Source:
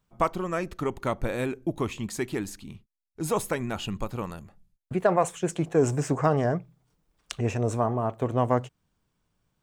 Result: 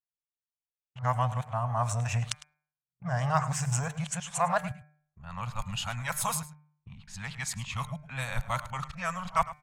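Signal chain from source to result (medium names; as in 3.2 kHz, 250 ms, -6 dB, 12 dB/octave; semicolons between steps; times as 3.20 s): reverse the whole clip; Chebyshev band-stop 140–860 Hz, order 2; gate -48 dBFS, range -40 dB; treble shelf 3.3 kHz +6.5 dB; de-hum 150.6 Hz, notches 16; level-controlled noise filter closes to 1.3 kHz, open at -28.5 dBFS; echo from a far wall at 18 m, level -16 dB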